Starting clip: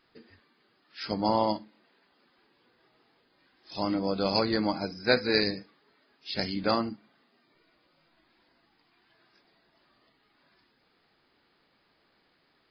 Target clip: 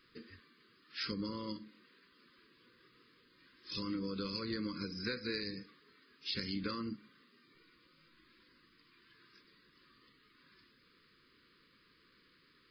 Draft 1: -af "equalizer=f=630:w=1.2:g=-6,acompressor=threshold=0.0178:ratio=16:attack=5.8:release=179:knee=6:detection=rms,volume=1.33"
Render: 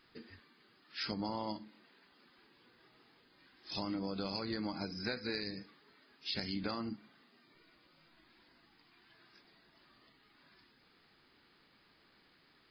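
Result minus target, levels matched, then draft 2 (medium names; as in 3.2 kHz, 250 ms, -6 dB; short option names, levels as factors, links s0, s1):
1 kHz band +5.0 dB
-af "equalizer=f=630:w=1.2:g=-6,acompressor=threshold=0.0178:ratio=16:attack=5.8:release=179:knee=6:detection=rms,asuperstop=centerf=740:order=12:qfactor=1.6,volume=1.33"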